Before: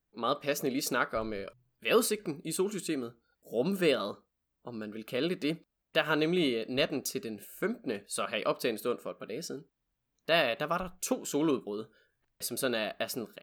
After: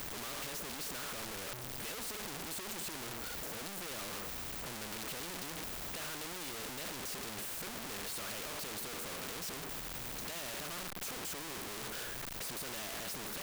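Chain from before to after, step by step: infinite clipping; de-esser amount 65%; hard clip -37.5 dBFS, distortion -16 dB; spectral compressor 2:1; gain +10.5 dB

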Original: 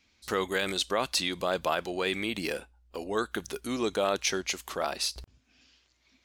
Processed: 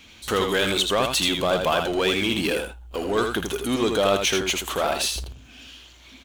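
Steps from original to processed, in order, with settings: thirty-one-band EQ 2000 Hz -4 dB, 3150 Hz +6 dB, 5000 Hz -9 dB; power-law curve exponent 0.7; on a send: echo 81 ms -5.5 dB; on the sum: gain +3 dB

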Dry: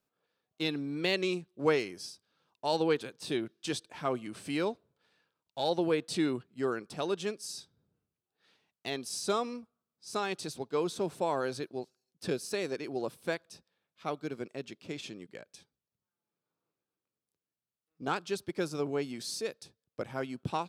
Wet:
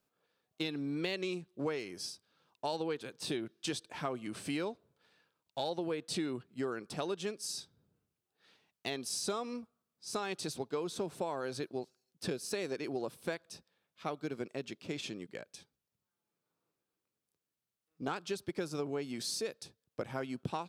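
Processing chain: compressor 6:1, threshold -35 dBFS, peak gain reduction 13 dB; gain +2 dB

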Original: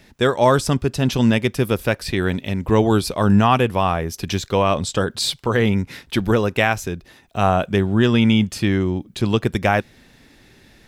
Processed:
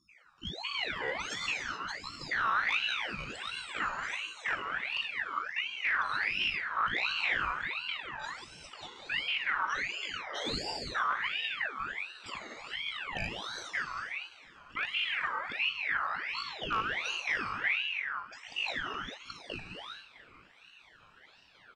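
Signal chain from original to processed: random spectral dropouts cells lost 79%; high shelf 7200 Hz -5.5 dB; soft clip -23 dBFS, distortion -5 dB; feedback echo 0.223 s, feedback 50%, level -19 dB; non-linear reverb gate 0.23 s flat, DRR -1 dB; speed mistake 15 ips tape played at 7.5 ips; ring modulator with a swept carrier 2000 Hz, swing 40%, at 1.4 Hz; gain -3 dB

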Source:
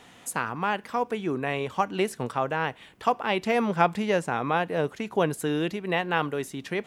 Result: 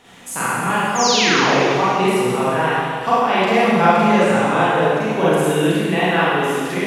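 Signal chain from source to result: painted sound fall, 0.95–1.63, 320–7200 Hz -27 dBFS; Schroeder reverb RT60 2 s, combs from 33 ms, DRR -10 dB

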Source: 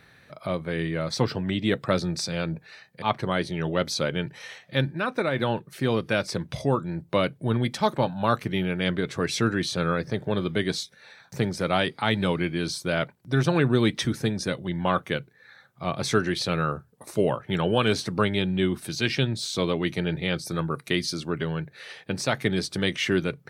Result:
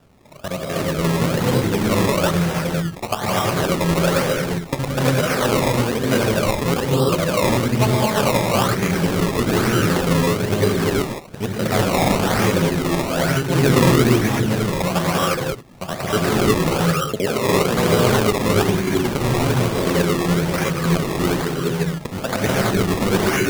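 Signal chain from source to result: local time reversal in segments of 63 ms; non-linear reverb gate 0.38 s rising, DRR -6 dB; decimation with a swept rate 20×, swing 100% 1.1 Hz; gain +1 dB

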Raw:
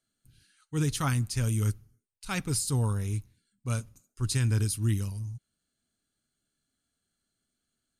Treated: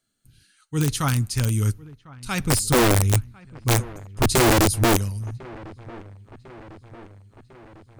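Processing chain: 2.4–4.97 low shelf 120 Hz +11.5 dB; wrapped overs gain 18 dB; dark delay 1.05 s, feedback 61%, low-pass 2100 Hz, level -21 dB; gain +5.5 dB

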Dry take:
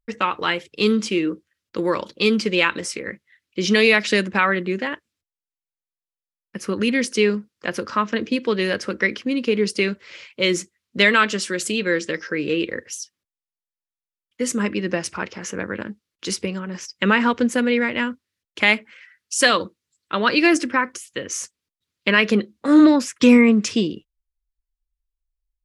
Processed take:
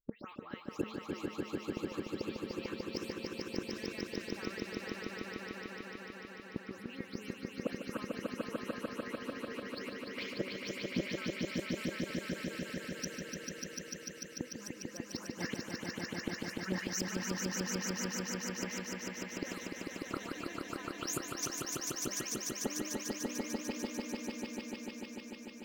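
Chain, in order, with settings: spectral delay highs late, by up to 0.175 s; gate -41 dBFS, range -10 dB; reverb removal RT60 0.59 s; harmonic-percussive split percussive +5 dB; limiter -11.5 dBFS, peak gain reduction 11.5 dB; flipped gate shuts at -20 dBFS, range -26 dB; on a send: swelling echo 0.148 s, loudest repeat 5, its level -3 dB; on the sum: decimation joined by straight lines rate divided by 2×; gain -3.5 dB

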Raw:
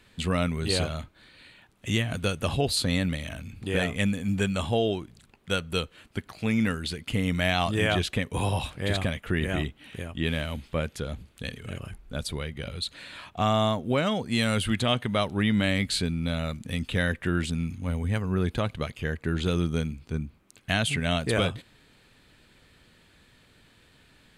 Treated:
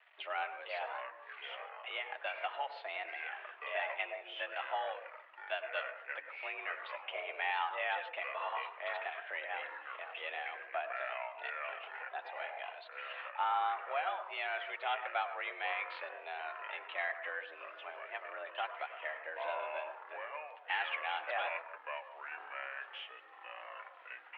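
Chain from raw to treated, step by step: transient shaper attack +3 dB, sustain -6 dB; in parallel at 0 dB: compressor, threshold -35 dBFS, peak gain reduction 15.5 dB; on the sum: requantised 8-bit, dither none; flange 0.55 Hz, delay 3.6 ms, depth 2.5 ms, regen -39%; soft clip -16 dBFS, distortion -23 dB; on a send at -10 dB: reverb RT60 0.35 s, pre-delay 97 ms; on the sum: echoes that change speed 0.445 s, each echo -6 st, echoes 3, each echo -6 dB; mistuned SSB +150 Hz 510–2700 Hz; gain -5 dB

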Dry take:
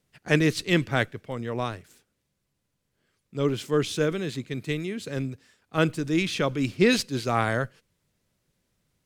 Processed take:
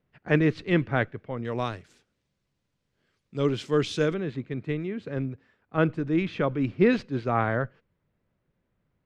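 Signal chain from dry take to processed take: LPF 2000 Hz 12 dB/oct, from 1.45 s 5600 Hz, from 4.14 s 1800 Hz

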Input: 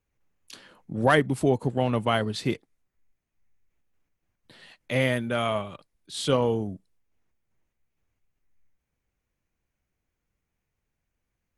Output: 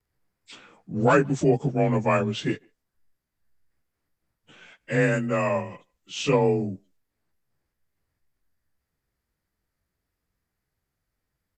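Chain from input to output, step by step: inharmonic rescaling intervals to 91%; speakerphone echo 0.15 s, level -30 dB; vibrato 0.81 Hz 19 cents; gain +3.5 dB

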